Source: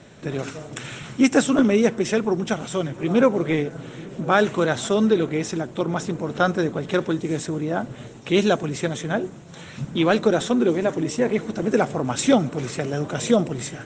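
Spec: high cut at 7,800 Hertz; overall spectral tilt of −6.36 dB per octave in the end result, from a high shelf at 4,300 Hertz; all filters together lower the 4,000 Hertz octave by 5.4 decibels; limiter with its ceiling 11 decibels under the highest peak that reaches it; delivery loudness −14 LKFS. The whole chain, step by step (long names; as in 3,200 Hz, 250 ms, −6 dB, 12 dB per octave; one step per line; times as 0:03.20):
low-pass filter 7,800 Hz
parametric band 4,000 Hz −3 dB
high-shelf EQ 4,300 Hz −7 dB
level +13 dB
brickwall limiter −2.5 dBFS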